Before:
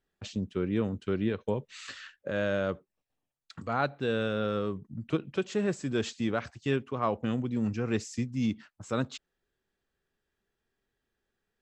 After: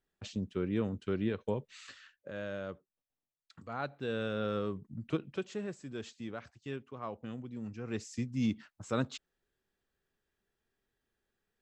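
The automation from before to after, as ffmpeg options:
-af "volume=4.73,afade=t=out:st=1.57:d=0.42:silence=0.446684,afade=t=in:st=3.68:d=0.84:silence=0.446684,afade=t=out:st=5.08:d=0.65:silence=0.375837,afade=t=in:st=7.75:d=0.67:silence=0.316228"

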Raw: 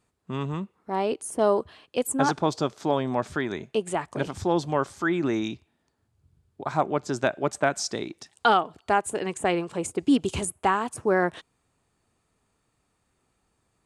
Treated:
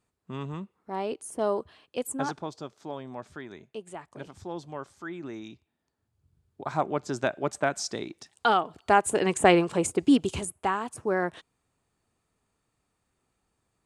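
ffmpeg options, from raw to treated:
-af "volume=4.73,afade=t=out:st=2.07:d=0.44:silence=0.421697,afade=t=in:st=5.45:d=1.2:silence=0.316228,afade=t=in:st=8.53:d=0.95:silence=0.354813,afade=t=out:st=9.48:d=0.96:silence=0.298538"

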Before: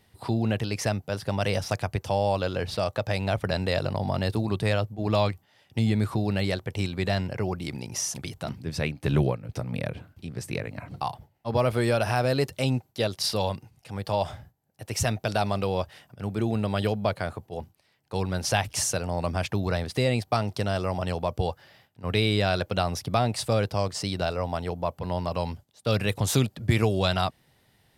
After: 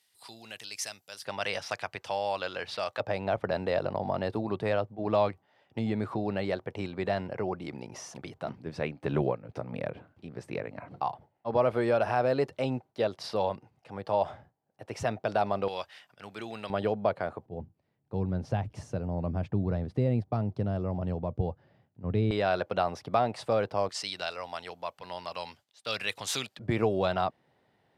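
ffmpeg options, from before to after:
-af "asetnsamples=n=441:p=0,asendcmd='1.25 bandpass f 2000;3 bandpass f 650;15.68 bandpass f 2500;16.7 bandpass f 600;17.46 bandpass f 170;22.31 bandpass f 750;23.89 bandpass f 2900;26.59 bandpass f 580',bandpass=f=7800:t=q:w=0.59:csg=0"

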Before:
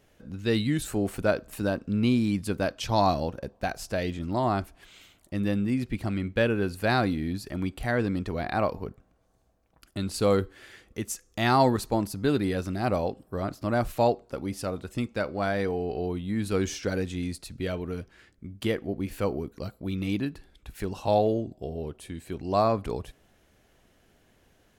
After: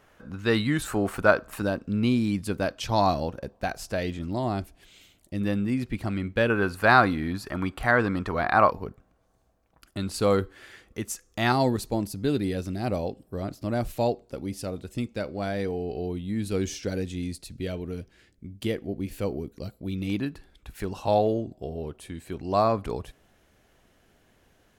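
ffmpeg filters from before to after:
-af "asetnsamples=n=441:p=0,asendcmd='1.62 equalizer g 1;4.28 equalizer g -7.5;5.41 equalizer g 2.5;6.5 equalizer g 13;8.71 equalizer g 2.5;11.52 equalizer g -7.5;20.1 equalizer g 2',equalizer=f=1200:t=o:w=1.4:g=12"

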